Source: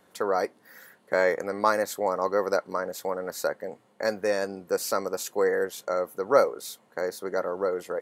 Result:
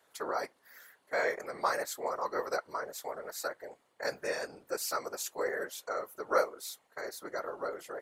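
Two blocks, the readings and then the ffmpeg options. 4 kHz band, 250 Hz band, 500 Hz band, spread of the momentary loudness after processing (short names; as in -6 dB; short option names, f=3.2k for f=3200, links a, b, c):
-4.0 dB, -11.5 dB, -10.0 dB, 11 LU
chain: -af "highpass=f=1k:p=1,afftfilt=real='hypot(re,im)*cos(2*PI*random(0))':imag='hypot(re,im)*sin(2*PI*random(1))':win_size=512:overlap=0.75,volume=2.5dB"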